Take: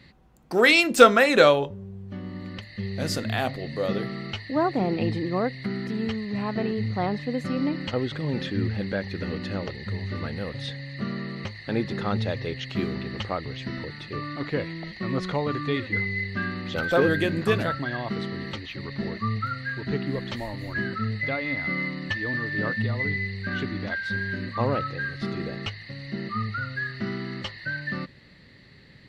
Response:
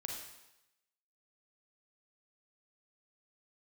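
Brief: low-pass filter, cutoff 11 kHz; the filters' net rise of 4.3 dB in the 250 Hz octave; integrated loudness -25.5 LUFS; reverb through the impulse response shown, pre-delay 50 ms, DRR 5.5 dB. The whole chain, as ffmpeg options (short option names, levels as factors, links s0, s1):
-filter_complex "[0:a]lowpass=11000,equalizer=f=250:t=o:g=5.5,asplit=2[s0][s1];[1:a]atrim=start_sample=2205,adelay=50[s2];[s1][s2]afir=irnorm=-1:irlink=0,volume=0.562[s3];[s0][s3]amix=inputs=2:normalize=0,volume=0.841"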